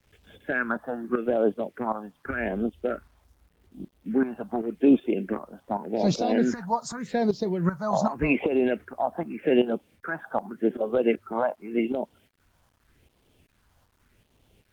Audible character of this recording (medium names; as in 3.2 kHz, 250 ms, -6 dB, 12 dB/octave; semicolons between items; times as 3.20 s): phasing stages 4, 0.85 Hz, lowest notch 370–1700 Hz; tremolo saw up 2.6 Hz, depth 70%; a quantiser's noise floor 12-bit, dither none; Opus